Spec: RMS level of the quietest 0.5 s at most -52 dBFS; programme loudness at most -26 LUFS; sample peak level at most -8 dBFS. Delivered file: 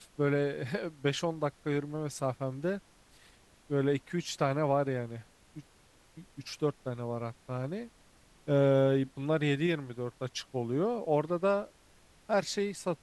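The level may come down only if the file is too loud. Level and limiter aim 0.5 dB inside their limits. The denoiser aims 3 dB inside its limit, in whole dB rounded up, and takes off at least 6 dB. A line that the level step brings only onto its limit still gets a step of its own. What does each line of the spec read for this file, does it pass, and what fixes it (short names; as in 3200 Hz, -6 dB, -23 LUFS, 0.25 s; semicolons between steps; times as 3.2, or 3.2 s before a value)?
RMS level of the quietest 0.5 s -62 dBFS: OK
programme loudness -32.0 LUFS: OK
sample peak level -15.0 dBFS: OK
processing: none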